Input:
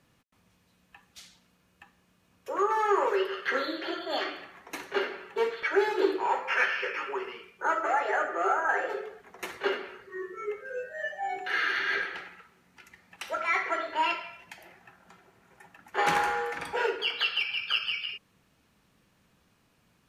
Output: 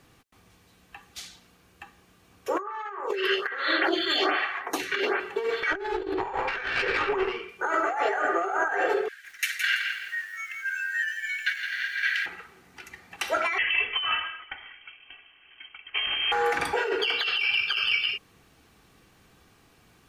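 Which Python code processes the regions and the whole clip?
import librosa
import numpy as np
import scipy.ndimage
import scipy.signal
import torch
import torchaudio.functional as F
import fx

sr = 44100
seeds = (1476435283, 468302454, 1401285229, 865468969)

y = fx.chain(x, sr, fx.peak_eq(hz=1900.0, db=12.0, octaves=2.8),
    fx.stagger_phaser(hz=1.2), at=(2.59, 5.2))
y = fx.chain(y, sr, fx.lowpass(hz=3300.0, slope=6),
    fx.over_compress(threshold_db=-35.0, ratio=-1.0),
    fx.tube_stage(drive_db=24.0, bias=0.7), at=(5.72, 7.49))
y = fx.chain(y, sr, fx.steep_highpass(hz=1500.0, slope=72),
    fx.over_compress(threshold_db=-35.0, ratio=-0.5),
    fx.echo_crushed(ms=166, feedback_pct=35, bits=10, wet_db=-6.0), at=(9.08, 12.26))
y = fx.chain(y, sr, fx.cheby1_highpass(hz=780.0, order=6),
    fx.freq_invert(carrier_hz=4000), at=(13.58, 16.32))
y = y + 0.36 * np.pad(y, (int(2.6 * sr / 1000.0), 0))[:len(y)]
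y = fx.over_compress(y, sr, threshold_db=-31.0, ratio=-1.0)
y = F.gain(torch.from_numpy(y), 4.5).numpy()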